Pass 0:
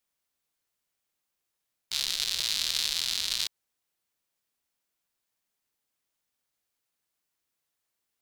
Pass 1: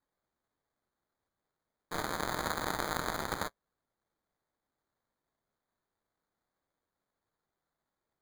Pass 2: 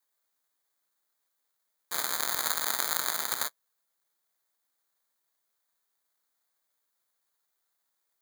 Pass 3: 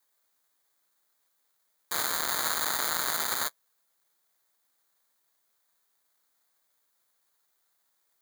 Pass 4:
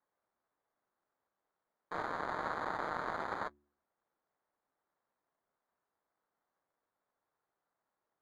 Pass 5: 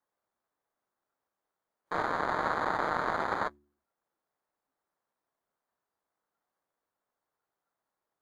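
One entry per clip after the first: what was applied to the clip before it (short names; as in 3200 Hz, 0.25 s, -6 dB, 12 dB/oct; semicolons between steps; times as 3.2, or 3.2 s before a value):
notch comb 150 Hz; sample-and-hold 16×; gain -4 dB
tilt +4.5 dB/oct; gain -1 dB
hard clip -17 dBFS, distortion -5 dB; gain +5.5 dB
LPF 1100 Hz 12 dB/oct; de-hum 72.3 Hz, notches 5
spectral noise reduction 8 dB; gain +7.5 dB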